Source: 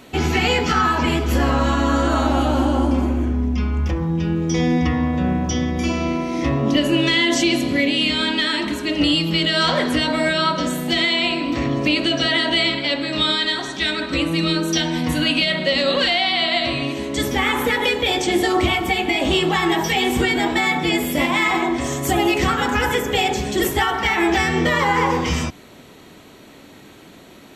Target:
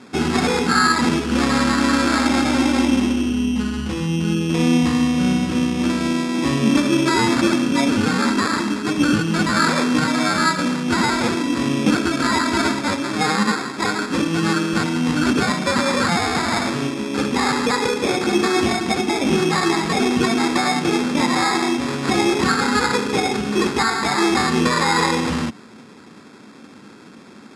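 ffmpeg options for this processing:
ffmpeg -i in.wav -af "acrusher=samples=15:mix=1:aa=0.000001,highpass=130,equalizer=frequency=220:width_type=q:width=4:gain=8,equalizer=frequency=640:width_type=q:width=4:gain=-8,equalizer=frequency=1400:width_type=q:width=4:gain=4,equalizer=frequency=2900:width_type=q:width=4:gain=5,equalizer=frequency=5100:width_type=q:width=4:gain=4,lowpass=frequency=9800:width=0.5412,lowpass=frequency=9800:width=1.3066" out.wav

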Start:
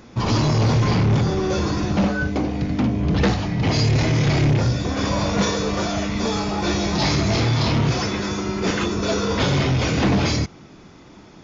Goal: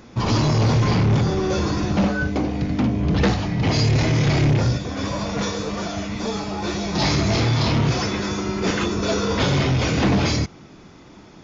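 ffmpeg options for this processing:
ffmpeg -i in.wav -filter_complex "[0:a]asplit=3[link_01][link_02][link_03];[link_01]afade=type=out:start_time=4.77:duration=0.02[link_04];[link_02]flanger=delay=4.3:depth=6.7:regen=50:speed=1.9:shape=sinusoidal,afade=type=in:start_time=4.77:duration=0.02,afade=type=out:start_time=6.94:duration=0.02[link_05];[link_03]afade=type=in:start_time=6.94:duration=0.02[link_06];[link_04][link_05][link_06]amix=inputs=3:normalize=0" out.wav

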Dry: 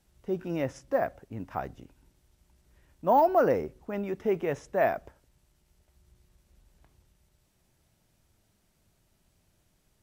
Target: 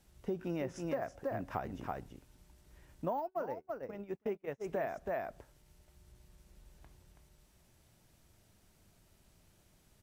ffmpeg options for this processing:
ffmpeg -i in.wav -filter_complex "[0:a]asplit=2[link_01][link_02];[link_02]aecho=0:1:327:0.473[link_03];[link_01][link_03]amix=inputs=2:normalize=0,acompressor=threshold=-35dB:ratio=12,asplit=3[link_04][link_05][link_06];[link_04]afade=type=out:start_time=3.05:duration=0.02[link_07];[link_05]agate=range=-36dB:threshold=-37dB:ratio=16:detection=peak,afade=type=in:start_time=3.05:duration=0.02,afade=type=out:start_time=4.64:duration=0.02[link_08];[link_06]afade=type=in:start_time=4.64:duration=0.02[link_09];[link_07][link_08][link_09]amix=inputs=3:normalize=0,volume=2dB" out.wav

